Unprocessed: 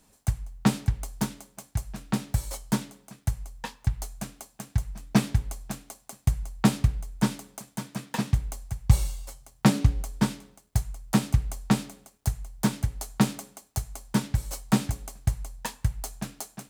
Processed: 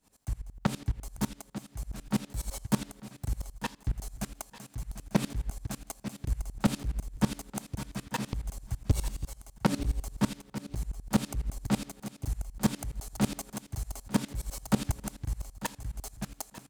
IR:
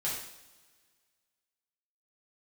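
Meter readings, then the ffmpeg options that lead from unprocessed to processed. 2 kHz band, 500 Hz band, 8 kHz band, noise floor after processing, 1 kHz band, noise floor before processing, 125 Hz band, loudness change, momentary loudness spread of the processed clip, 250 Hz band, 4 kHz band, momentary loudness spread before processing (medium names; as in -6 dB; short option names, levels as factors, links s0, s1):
-4.5 dB, -2.5 dB, -4.0 dB, -61 dBFS, -4.0 dB, -63 dBFS, -7.0 dB, -6.0 dB, 10 LU, -4.5 dB, -4.5 dB, 14 LU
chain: -af "dynaudnorm=f=180:g=21:m=1.58,asoftclip=type=tanh:threshold=0.141,aecho=1:1:895|1790:0.251|0.0377,aeval=exprs='val(0)*pow(10,-21*if(lt(mod(-12*n/s,1),2*abs(-12)/1000),1-mod(-12*n/s,1)/(2*abs(-12)/1000),(mod(-12*n/s,1)-2*abs(-12)/1000)/(1-2*abs(-12)/1000))/20)':c=same,volume=1.33"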